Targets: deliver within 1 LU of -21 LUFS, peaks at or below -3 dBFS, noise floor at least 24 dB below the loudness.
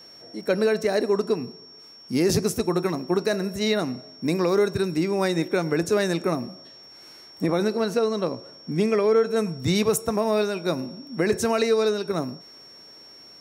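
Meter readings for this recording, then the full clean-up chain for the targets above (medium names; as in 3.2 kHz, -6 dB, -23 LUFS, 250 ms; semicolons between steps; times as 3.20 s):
steady tone 5.5 kHz; tone level -45 dBFS; loudness -24.0 LUFS; peak level -11.5 dBFS; loudness target -21.0 LUFS
-> band-stop 5.5 kHz, Q 30; trim +3 dB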